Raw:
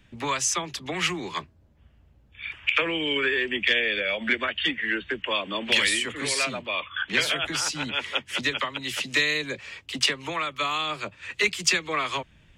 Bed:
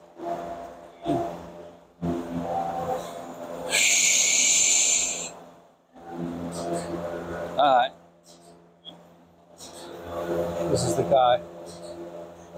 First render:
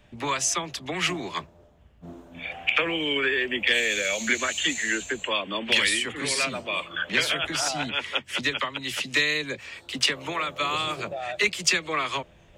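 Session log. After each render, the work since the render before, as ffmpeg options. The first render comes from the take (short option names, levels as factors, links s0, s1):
-filter_complex "[1:a]volume=0.188[s0];[0:a][s0]amix=inputs=2:normalize=0"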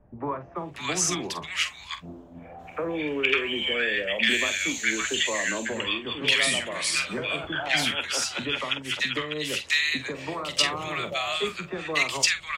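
-filter_complex "[0:a]asplit=2[s0][s1];[s1]adelay=46,volume=0.282[s2];[s0][s2]amix=inputs=2:normalize=0,acrossover=split=1200[s3][s4];[s4]adelay=560[s5];[s3][s5]amix=inputs=2:normalize=0"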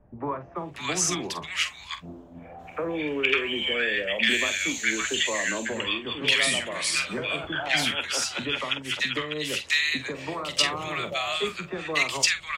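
-af anull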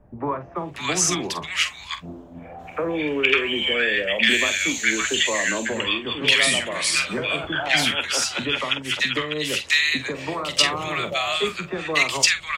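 -af "volume=1.68"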